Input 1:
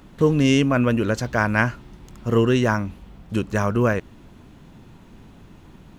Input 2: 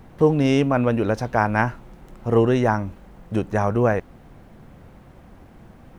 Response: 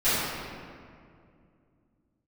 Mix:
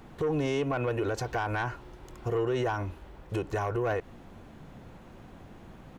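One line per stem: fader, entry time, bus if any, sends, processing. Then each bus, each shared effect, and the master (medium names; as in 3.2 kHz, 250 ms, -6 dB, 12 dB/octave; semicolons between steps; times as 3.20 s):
-5.0 dB, 0.00 s, no send, compression, threshold -21 dBFS, peak gain reduction 9 dB
-2.5 dB, 3 ms, no send, tone controls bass -6 dB, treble -12 dB; saturation -13.5 dBFS, distortion -14 dB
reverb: none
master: peak limiter -21.5 dBFS, peak gain reduction 9 dB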